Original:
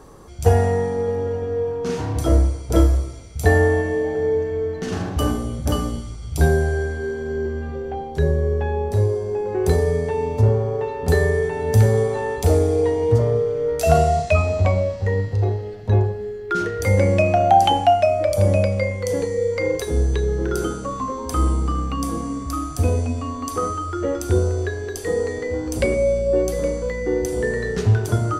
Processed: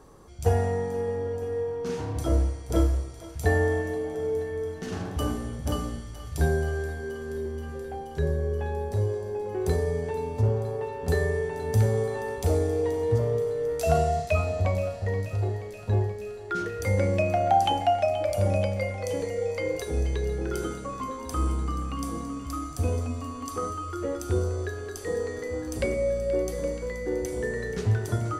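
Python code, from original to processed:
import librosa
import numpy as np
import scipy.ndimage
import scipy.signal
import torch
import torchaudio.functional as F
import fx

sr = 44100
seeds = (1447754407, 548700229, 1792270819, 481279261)

y = fx.echo_thinned(x, sr, ms=478, feedback_pct=82, hz=670.0, wet_db=-14)
y = y * librosa.db_to_amplitude(-7.5)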